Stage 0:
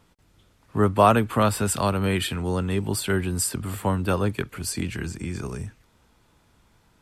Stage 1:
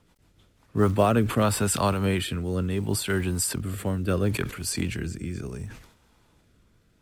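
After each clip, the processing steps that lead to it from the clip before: short-mantissa float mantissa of 4-bit; rotary speaker horn 6.7 Hz, later 0.7 Hz, at 0.25; sustainer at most 88 dB/s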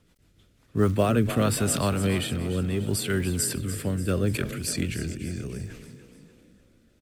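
bell 910 Hz -8 dB 0.78 oct; on a send: frequency-shifting echo 0.293 s, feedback 51%, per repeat +31 Hz, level -12.5 dB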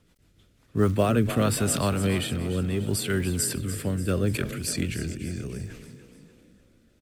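nothing audible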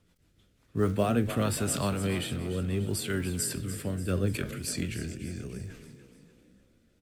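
flange 0.71 Hz, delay 9.9 ms, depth 8.3 ms, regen +74%

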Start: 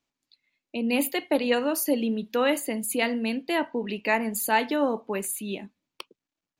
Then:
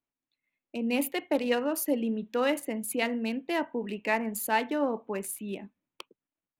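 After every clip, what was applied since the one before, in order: Wiener smoothing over 9 samples; AGC gain up to 5.5 dB; gain -8.5 dB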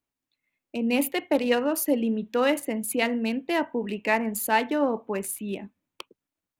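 bell 77 Hz +6.5 dB 0.77 oct; gain +4 dB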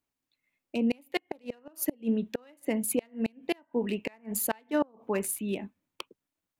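flipped gate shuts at -16 dBFS, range -33 dB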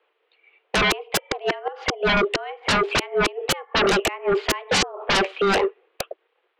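mistuned SSB +190 Hz 170–3100 Hz; sine folder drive 18 dB, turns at -15.5 dBFS

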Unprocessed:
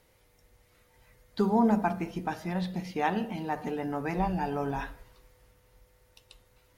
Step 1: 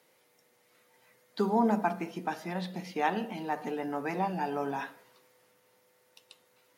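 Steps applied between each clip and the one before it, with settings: Bessel high-pass 240 Hz, order 8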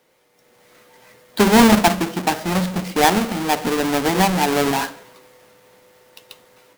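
half-waves squared off; AGC gain up to 10.5 dB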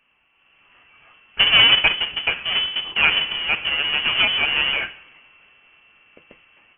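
inverted band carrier 3200 Hz; gain -2 dB

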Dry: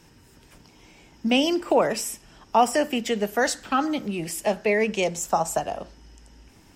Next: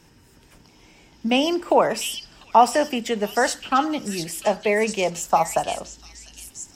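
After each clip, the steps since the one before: delay with a stepping band-pass 0.698 s, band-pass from 4100 Hz, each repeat 0.7 oct, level -1.5 dB; dynamic EQ 950 Hz, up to +6 dB, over -34 dBFS, Q 1.3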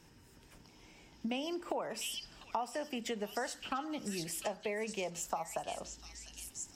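compressor 6:1, threshold -28 dBFS, peak gain reduction 17.5 dB; gain -7 dB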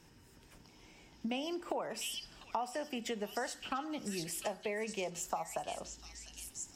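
resonator 370 Hz, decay 0.78 s, mix 50%; gain +5.5 dB

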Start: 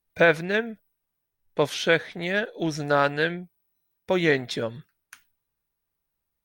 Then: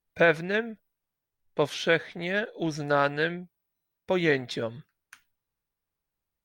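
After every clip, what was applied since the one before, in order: high shelf 7200 Hz -6 dB; gain -2.5 dB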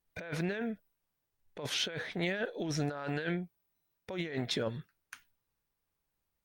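negative-ratio compressor -32 dBFS, ratio -1; gain -3.5 dB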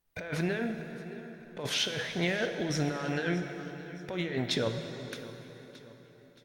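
feedback echo 0.622 s, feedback 41%, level -17 dB; plate-style reverb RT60 4.1 s, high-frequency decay 0.7×, DRR 6 dB; gain +3 dB

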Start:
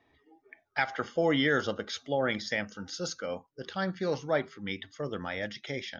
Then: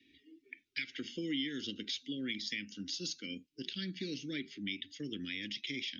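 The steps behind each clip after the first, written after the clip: Chebyshev band-stop 290–2500 Hz, order 3; three-band isolator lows -18 dB, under 260 Hz, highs -13 dB, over 5500 Hz; compressor 3:1, threshold -49 dBFS, peak gain reduction 15.5 dB; gain +10.5 dB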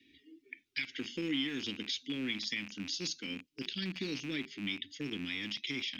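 rattling part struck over -56 dBFS, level -36 dBFS; gain +2 dB

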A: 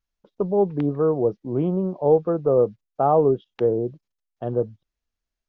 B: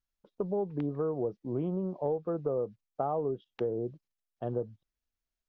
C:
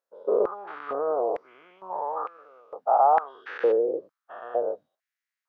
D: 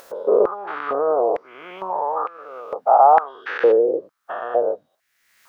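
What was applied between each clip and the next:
compressor, threshold -22 dBFS, peak gain reduction 10.5 dB; gain -6 dB
spectral dilation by 0.24 s; resonant high shelf 1900 Hz -6 dB, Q 1.5; stepped high-pass 2.2 Hz 510–2500 Hz
upward compressor, threshold -28 dBFS; gain +7 dB

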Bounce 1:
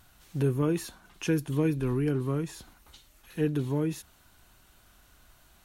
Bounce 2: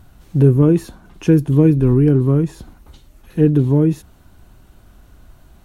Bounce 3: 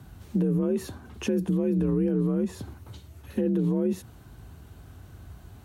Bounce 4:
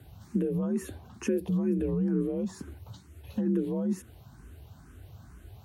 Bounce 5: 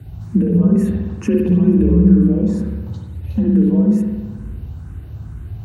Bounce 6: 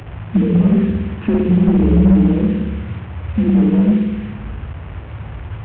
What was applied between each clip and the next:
tilt shelf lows +8 dB, about 780 Hz; gain +8.5 dB
limiter -12.5 dBFS, peak gain reduction 10.5 dB; compressor 2:1, threshold -23 dBFS, peak gain reduction 4.5 dB; frequency shift +45 Hz; gain -1.5 dB
endless phaser +2.2 Hz
tone controls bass +12 dB, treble -3 dB; notch 3300 Hz, Q 16; spring tank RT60 1.3 s, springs 57 ms, chirp 50 ms, DRR 0 dB; gain +5 dB
delta modulation 16 kbps, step -30.5 dBFS; gain +1 dB

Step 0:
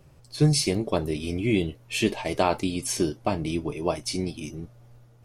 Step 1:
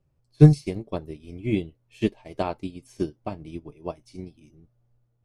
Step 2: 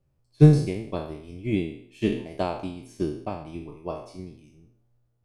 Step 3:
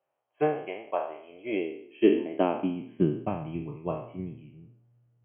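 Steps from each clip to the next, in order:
tilt -1.5 dB/oct; upward expander 2.5:1, over -29 dBFS; gain +5.5 dB
spectral trails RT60 0.61 s; gain -2 dB
high-pass sweep 700 Hz -> 130 Hz, 1.14–3.38; brick-wall FIR low-pass 3300 Hz

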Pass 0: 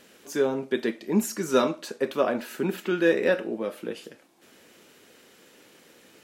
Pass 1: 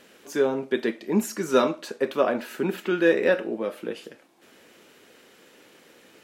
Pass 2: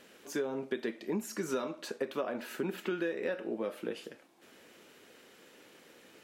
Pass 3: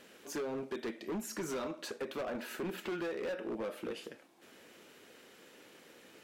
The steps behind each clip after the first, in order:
tone controls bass -3 dB, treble -4 dB; gain +2 dB
compressor 16:1, threshold -26 dBFS, peak gain reduction 13 dB; gain -4 dB
hard clip -34 dBFS, distortion -9 dB

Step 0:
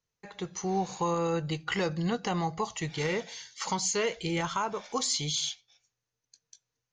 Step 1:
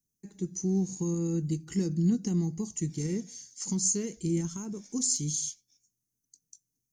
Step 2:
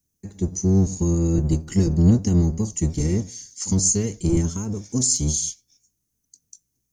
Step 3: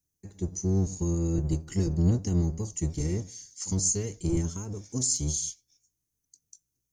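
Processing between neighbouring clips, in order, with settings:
EQ curve 120 Hz 0 dB, 210 Hz +9 dB, 340 Hz +4 dB, 570 Hz -19 dB, 1200 Hz -23 dB, 1800 Hz -17 dB, 3600 Hz -18 dB, 5400 Hz 0 dB, 8900 Hz +12 dB; gain -1 dB
octaver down 1 oct, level 0 dB; gain +7.5 dB
bell 220 Hz -9 dB 0.29 oct; gain -6.5 dB

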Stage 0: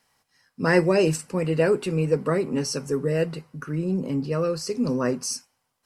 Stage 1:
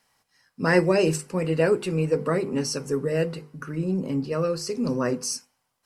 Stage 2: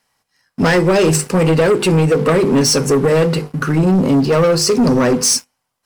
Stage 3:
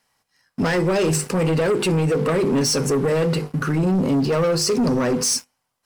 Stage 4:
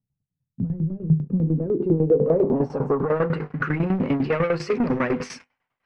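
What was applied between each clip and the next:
notches 50/100/150/200/250/300/350/400/450/500 Hz
compressor 6:1, threshold -23 dBFS, peak gain reduction 9.5 dB; sample leveller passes 3; gain +7.5 dB
limiter -13 dBFS, peak gain reduction 6 dB; gain -2 dB
low-pass sweep 140 Hz -> 2200 Hz, 0.98–3.69; tremolo saw down 10 Hz, depth 80%

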